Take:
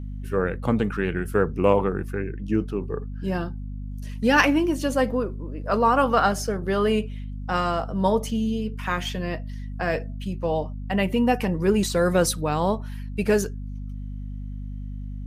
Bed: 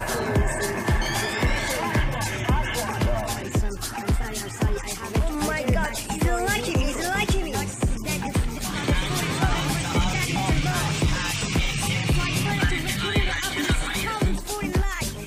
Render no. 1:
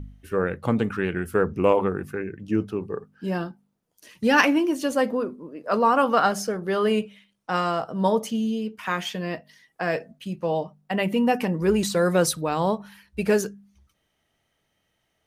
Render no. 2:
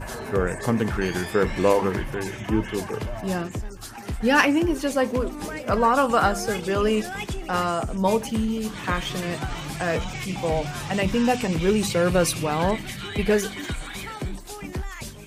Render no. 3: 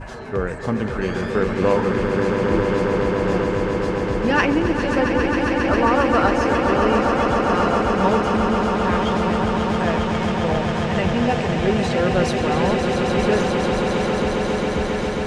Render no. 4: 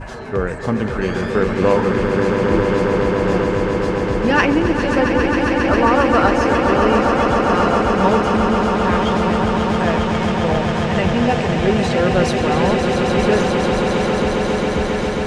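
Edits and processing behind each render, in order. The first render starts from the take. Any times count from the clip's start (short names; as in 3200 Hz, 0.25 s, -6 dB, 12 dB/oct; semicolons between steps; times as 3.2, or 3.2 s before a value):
de-hum 50 Hz, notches 5
add bed -8 dB
air absorption 110 m; swelling echo 0.135 s, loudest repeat 8, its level -8 dB
gain +3 dB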